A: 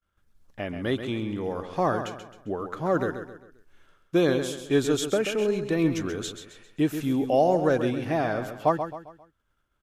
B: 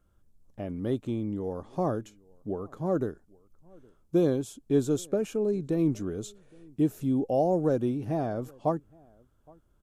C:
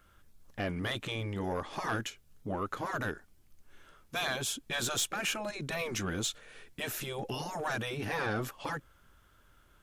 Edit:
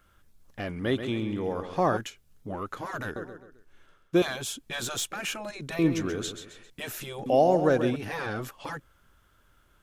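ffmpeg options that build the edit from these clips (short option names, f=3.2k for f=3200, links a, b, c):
-filter_complex "[0:a]asplit=4[a][b][c][d];[2:a]asplit=5[e][f][g][h][i];[e]atrim=end=0.822[j];[a]atrim=start=0.818:end=1.972[k];[f]atrim=start=1.968:end=3.162[l];[b]atrim=start=3.158:end=4.222[m];[g]atrim=start=4.218:end=5.792[n];[c]atrim=start=5.788:end=6.702[o];[h]atrim=start=6.698:end=7.262[p];[d]atrim=start=7.258:end=7.962[q];[i]atrim=start=7.958[r];[j][k]acrossfade=d=0.004:c1=hsin:c2=hsin[s];[s][l]acrossfade=d=0.004:c1=hsin:c2=hsin[t];[t][m]acrossfade=d=0.004:c1=hsin:c2=hsin[u];[u][n]acrossfade=d=0.004:c1=hsin:c2=hsin[v];[v][o]acrossfade=d=0.004:c1=hsin:c2=hsin[w];[w][p]acrossfade=d=0.004:c1=hsin:c2=hsin[x];[x][q]acrossfade=d=0.004:c1=hsin:c2=hsin[y];[y][r]acrossfade=d=0.004:c1=hsin:c2=hsin"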